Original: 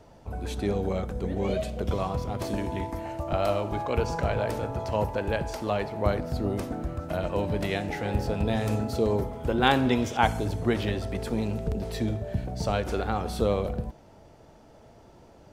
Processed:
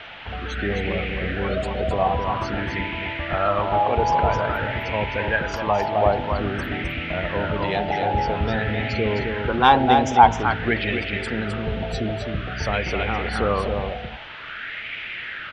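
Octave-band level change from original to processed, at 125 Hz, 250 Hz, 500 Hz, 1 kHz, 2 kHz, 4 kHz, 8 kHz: +2.5 dB, +2.0 dB, +4.0 dB, +11.0 dB, +10.5 dB, +7.0 dB, no reading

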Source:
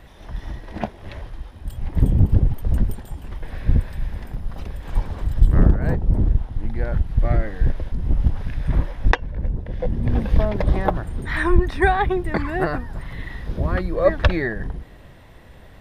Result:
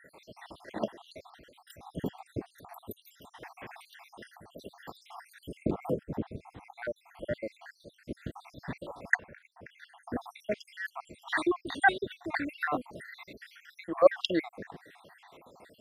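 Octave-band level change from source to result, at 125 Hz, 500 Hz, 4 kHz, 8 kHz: -25.0 dB, -7.0 dB, -3.0 dB, no reading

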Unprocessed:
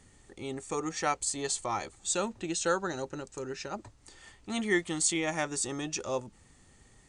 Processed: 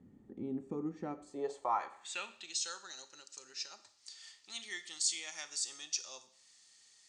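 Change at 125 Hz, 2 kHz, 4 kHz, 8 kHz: -12.0 dB, -11.0 dB, -1.5 dB, -6.0 dB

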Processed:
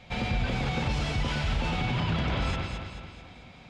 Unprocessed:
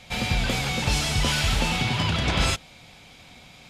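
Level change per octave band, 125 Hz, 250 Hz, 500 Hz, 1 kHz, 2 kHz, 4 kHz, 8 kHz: -2.5 dB, -2.5 dB, -3.5 dB, -4.0 dB, -6.5 dB, -10.0 dB, -17.0 dB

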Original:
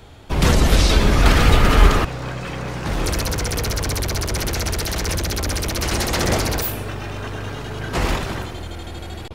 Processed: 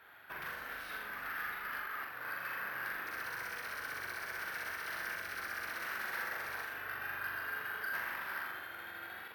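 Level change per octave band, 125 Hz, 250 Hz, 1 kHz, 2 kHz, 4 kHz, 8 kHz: under -40 dB, -34.5 dB, -17.0 dB, -9.5 dB, -24.5 dB, -28.5 dB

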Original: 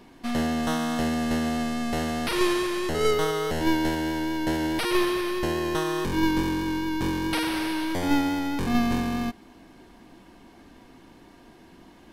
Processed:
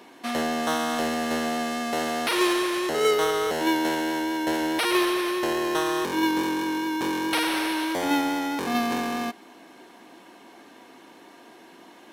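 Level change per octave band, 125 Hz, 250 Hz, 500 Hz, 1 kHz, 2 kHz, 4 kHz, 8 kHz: -11.5 dB, -1.0 dB, +1.5 dB, +3.5 dB, +3.0 dB, +3.0 dB, +3.5 dB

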